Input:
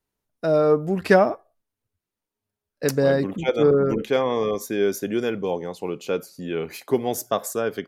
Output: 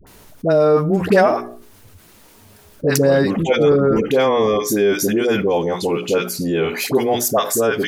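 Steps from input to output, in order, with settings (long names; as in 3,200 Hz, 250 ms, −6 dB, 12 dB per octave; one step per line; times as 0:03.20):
mains-hum notches 60/120/180/240/300/360/420 Hz
all-pass dispersion highs, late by 69 ms, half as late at 790 Hz
envelope flattener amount 50%
level +2 dB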